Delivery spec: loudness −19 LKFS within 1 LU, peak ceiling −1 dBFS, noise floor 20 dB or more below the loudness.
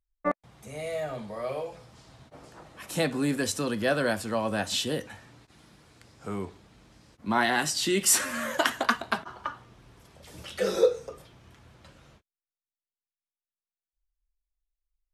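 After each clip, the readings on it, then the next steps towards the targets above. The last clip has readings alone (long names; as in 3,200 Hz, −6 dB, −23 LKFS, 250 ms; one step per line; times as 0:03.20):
integrated loudness −28.0 LKFS; sample peak −6.0 dBFS; target loudness −19.0 LKFS
→ level +9 dB
brickwall limiter −1 dBFS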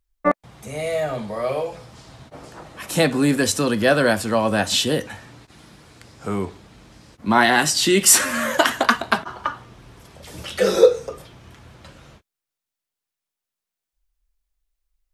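integrated loudness −19.5 LKFS; sample peak −1.0 dBFS; background noise floor −86 dBFS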